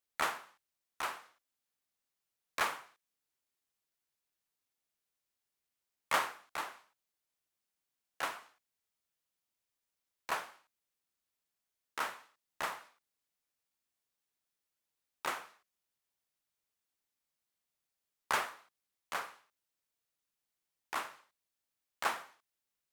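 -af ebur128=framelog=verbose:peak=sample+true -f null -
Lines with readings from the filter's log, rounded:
Integrated loudness:
  I:         -38.6 LUFS
  Threshold: -49.7 LUFS
Loudness range:
  LRA:         7.5 LU
  Threshold: -64.3 LUFS
  LRA low:   -48.6 LUFS
  LRA high:  -41.1 LUFS
Sample peak:
  Peak:      -16.3 dBFS
True peak:
  Peak:      -16.1 dBFS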